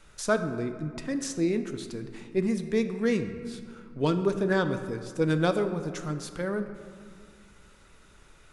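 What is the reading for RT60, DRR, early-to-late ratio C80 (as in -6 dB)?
2.1 s, 8.0 dB, 10.5 dB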